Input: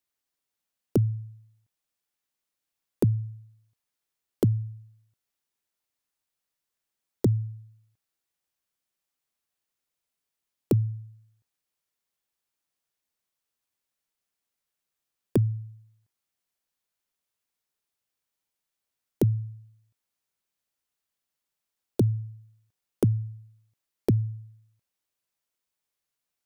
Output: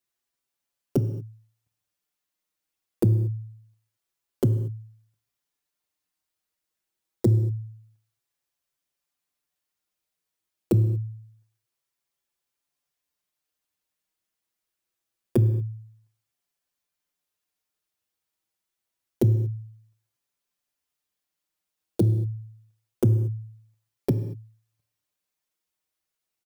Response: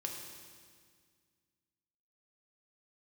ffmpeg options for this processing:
-filter_complex "[0:a]asplit=2[a][b];[1:a]atrim=start_sample=2205,afade=t=out:st=0.29:d=0.01,atrim=end_sample=13230[c];[b][c]afir=irnorm=-1:irlink=0,volume=-3.5dB[d];[a][d]amix=inputs=2:normalize=0,asplit=2[e][f];[f]adelay=5.6,afreqshift=0.26[g];[e][g]amix=inputs=2:normalize=1"

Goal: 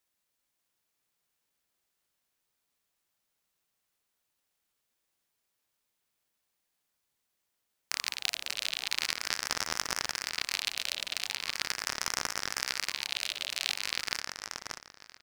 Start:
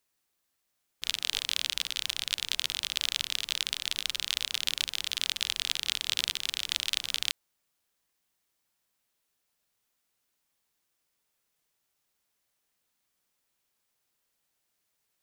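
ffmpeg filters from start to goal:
-filter_complex "[0:a]areverse,asplit=2[a][b];[b]adelay=584,lowpass=f=4.8k:p=1,volume=-4.5dB,asplit=2[c][d];[d]adelay=584,lowpass=f=4.8k:p=1,volume=0.27,asplit=2[e][f];[f]adelay=584,lowpass=f=4.8k:p=1,volume=0.27,asplit=2[g][h];[h]adelay=584,lowpass=f=4.8k:p=1,volume=0.27[i];[a][c][e][g][i]amix=inputs=5:normalize=0,aeval=exprs='val(0)*sin(2*PI*1300*n/s+1300*0.55/0.41*sin(2*PI*0.41*n/s))':c=same"

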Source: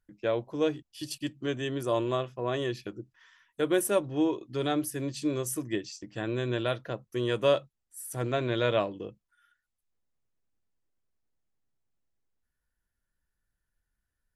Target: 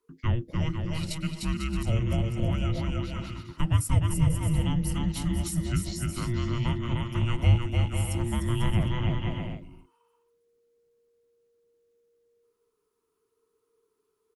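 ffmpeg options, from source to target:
-filter_complex "[0:a]afreqshift=-470,aecho=1:1:300|495|621.8|704.1|757.7:0.631|0.398|0.251|0.158|0.1,acrossover=split=160[a][b];[b]acompressor=threshold=-37dB:ratio=3[c];[a][c]amix=inputs=2:normalize=0,volume=4dB"

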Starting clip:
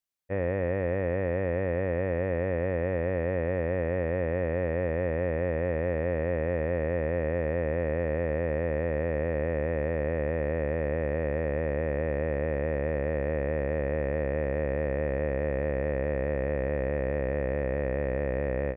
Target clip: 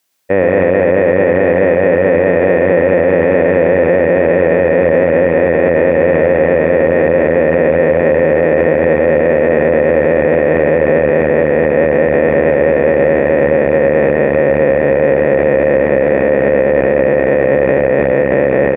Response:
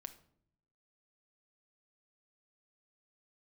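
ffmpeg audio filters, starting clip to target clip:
-filter_complex "[0:a]highpass=200,bandreject=f=1.2k:w=17,asplit=2[a][b];[b]aecho=0:1:114|799:0.562|0.224[c];[a][c]amix=inputs=2:normalize=0,alimiter=level_in=24.5dB:limit=-1dB:release=50:level=0:latency=1,volume=-1dB"

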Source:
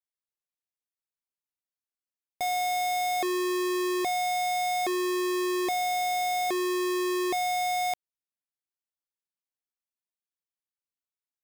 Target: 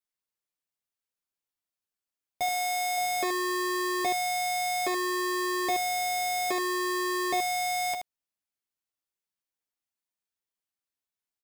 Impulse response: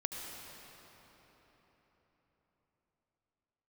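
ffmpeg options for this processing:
-filter_complex "[0:a]asettb=1/sr,asplit=3[a][b][c];[a]atrim=end=2.464[d];[b]atrim=start=2.46:end=2.98,asetpts=PTS-STARTPTS,afade=t=in:d=0.004:c=qsin,afade=t=out:st=0.516:d=0.004:c=qsin,highpass=280[e];[c]atrim=start=2.976[f];[d][e]acrossfade=d=0.004:c1=hsin:c2=qsin[g];[g][f]acrossfade=d=0.004:c1=qsin:c2=hsin,aecho=1:1:10|78:0.596|0.447"

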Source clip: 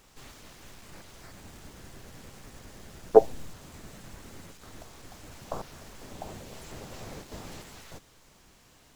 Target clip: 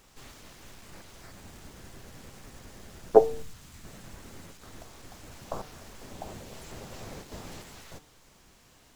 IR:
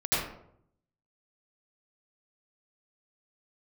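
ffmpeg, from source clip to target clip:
-filter_complex "[0:a]bandreject=f=150.2:t=h:w=4,bandreject=f=300.4:t=h:w=4,bandreject=f=450.6:t=h:w=4,bandreject=f=600.8:t=h:w=4,bandreject=f=751:t=h:w=4,bandreject=f=901.2:t=h:w=4,bandreject=f=1.0514k:t=h:w=4,bandreject=f=1.2016k:t=h:w=4,bandreject=f=1.3518k:t=h:w=4,bandreject=f=1.502k:t=h:w=4,bandreject=f=1.6522k:t=h:w=4,bandreject=f=1.8024k:t=h:w=4,bandreject=f=1.9526k:t=h:w=4,bandreject=f=2.1028k:t=h:w=4,bandreject=f=2.253k:t=h:w=4,bandreject=f=2.4032k:t=h:w=4,bandreject=f=2.5534k:t=h:w=4,bandreject=f=2.7036k:t=h:w=4,bandreject=f=2.8538k:t=h:w=4,bandreject=f=3.004k:t=h:w=4,bandreject=f=3.1542k:t=h:w=4,bandreject=f=3.3044k:t=h:w=4,bandreject=f=3.4546k:t=h:w=4,bandreject=f=3.6048k:t=h:w=4,bandreject=f=3.755k:t=h:w=4,bandreject=f=3.9052k:t=h:w=4,bandreject=f=4.0554k:t=h:w=4,bandreject=f=4.2056k:t=h:w=4,bandreject=f=4.3558k:t=h:w=4,bandreject=f=4.506k:t=h:w=4,bandreject=f=4.6562k:t=h:w=4,asettb=1/sr,asplit=3[a][b][c];[a]atrim=end=3.424[d];[b]atrim=start=3.42:end=3.85,asetpts=PTS-STARTPTS,afade=t=in:d=0.004:c=qsin,afade=t=out:st=0.426:d=0.004:c=qsin,equalizer=f=490:w=0.66:g=-10.5[e];[c]atrim=start=3.846[f];[d][e]acrossfade=d=0.004:c1=hsin:c2=qsin[g];[g][f]acrossfade=d=0.004:c1=qsin:c2=hsin"

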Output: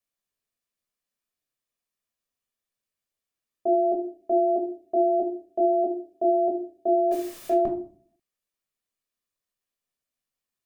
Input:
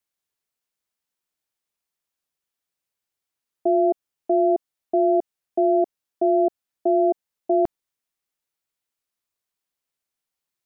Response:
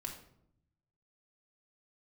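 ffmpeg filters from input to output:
-filter_complex "[0:a]asettb=1/sr,asplit=3[a][b][c];[a]atrim=end=7.114[d];[b]atrim=start=7.11:end=7.54,asetpts=PTS-STARTPTS,afade=t=in:d=0.004:c=qsin,afade=t=out:st=0.426:d=0.004:c=qsin,aeval=exprs='val(0)+0.5*0.0178*sgn(val(0))':c=same[e];[c]atrim=start=7.536[f];[d][e]acrossfade=d=0.004:c1=hsin:c2=qsin[g];[g][f]acrossfade=d=0.004:c1=qsin:c2=hsin[h];[1:a]atrim=start_sample=2205,asetrate=79380,aresample=44100[i];[h][i]afir=irnorm=-1:irlink=0,volume=4dB"

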